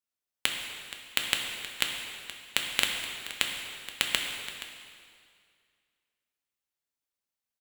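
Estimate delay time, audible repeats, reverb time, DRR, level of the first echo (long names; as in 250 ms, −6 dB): 474 ms, 1, 2.1 s, 1.0 dB, −15.0 dB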